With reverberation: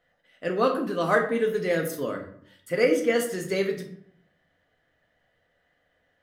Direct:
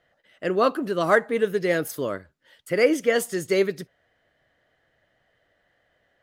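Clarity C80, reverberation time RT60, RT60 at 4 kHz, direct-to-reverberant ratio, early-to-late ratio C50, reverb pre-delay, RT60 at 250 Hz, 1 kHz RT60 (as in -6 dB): 12.0 dB, 0.60 s, 0.40 s, 2.0 dB, 8.5 dB, 4 ms, 0.80 s, 0.60 s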